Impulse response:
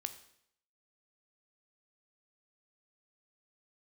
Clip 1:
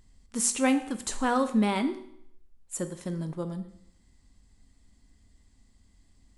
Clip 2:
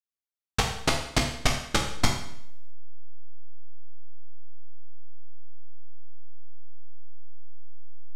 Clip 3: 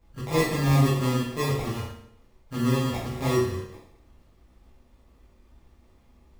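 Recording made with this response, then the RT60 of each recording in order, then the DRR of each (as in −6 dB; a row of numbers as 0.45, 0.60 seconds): 1; 0.70, 0.70, 0.70 seconds; 9.0, 0.5, −8.5 decibels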